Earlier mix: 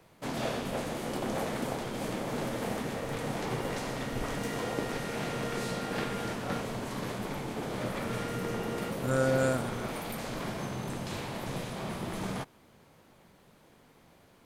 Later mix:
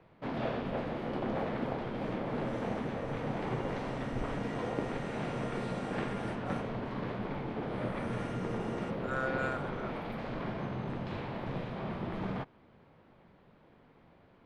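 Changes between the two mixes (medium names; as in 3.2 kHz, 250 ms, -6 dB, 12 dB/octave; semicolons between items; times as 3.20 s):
speech: add Butterworth band-pass 1.6 kHz, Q 0.67; first sound: add distance through air 360 m; second sound -6.5 dB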